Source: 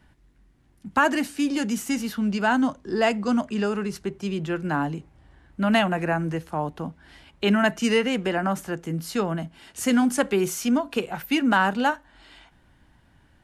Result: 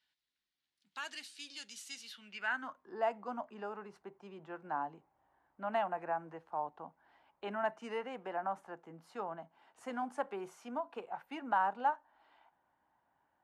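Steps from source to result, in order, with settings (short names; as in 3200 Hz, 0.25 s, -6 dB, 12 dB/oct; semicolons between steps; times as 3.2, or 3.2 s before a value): dynamic EQ 9600 Hz, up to +6 dB, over -50 dBFS, Q 1.2; band-pass sweep 4000 Hz -> 860 Hz, 2.03–2.96; gain -6.5 dB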